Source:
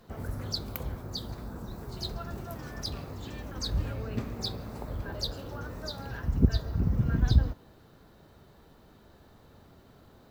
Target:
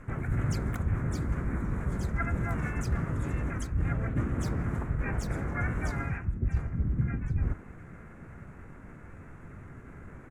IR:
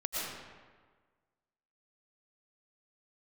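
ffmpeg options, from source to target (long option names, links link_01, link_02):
-filter_complex "[0:a]adynamicsmooth=sensitivity=4.5:basefreq=6700,firequalizer=gain_entry='entry(130,0);entry(230,-3);entry(620,-13);entry(1000,-4);entry(1400,3);entry(2800,-28);entry(4000,-29);entry(6800,0);entry(13000,-13)':delay=0.05:min_phase=1,areverse,acompressor=threshold=-36dB:ratio=16,areverse,bandreject=frequency=213.9:width_type=h:width=4,bandreject=frequency=427.8:width_type=h:width=4,bandreject=frequency=641.7:width_type=h:width=4,bandreject=frequency=855.6:width_type=h:width=4,bandreject=frequency=1069.5:width_type=h:width=4,bandreject=frequency=1283.4:width_type=h:width=4,bandreject=frequency=1497.3:width_type=h:width=4,bandreject=frequency=1711.2:width_type=h:width=4,bandreject=frequency=1925.1:width_type=h:width=4,asplit=4[link_01][link_02][link_03][link_04];[link_02]asetrate=22050,aresample=44100,atempo=2,volume=-7dB[link_05];[link_03]asetrate=52444,aresample=44100,atempo=0.840896,volume=-2dB[link_06];[link_04]asetrate=66075,aresample=44100,atempo=0.66742,volume=-4dB[link_07];[link_01][link_05][link_06][link_07]amix=inputs=4:normalize=0,volume=8dB"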